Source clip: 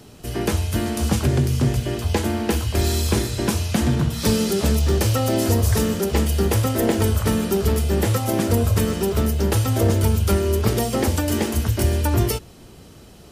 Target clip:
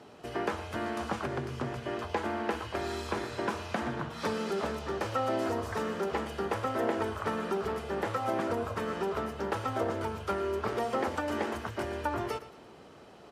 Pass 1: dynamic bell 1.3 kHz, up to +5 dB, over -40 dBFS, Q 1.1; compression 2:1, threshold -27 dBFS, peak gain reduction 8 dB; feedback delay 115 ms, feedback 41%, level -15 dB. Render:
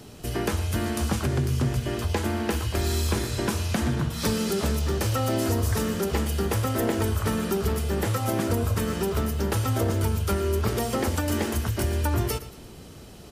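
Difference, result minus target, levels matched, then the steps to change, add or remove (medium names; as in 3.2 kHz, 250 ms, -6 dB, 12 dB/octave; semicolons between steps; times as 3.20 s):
1 kHz band -6.5 dB
add after compression: band-pass filter 920 Hz, Q 0.74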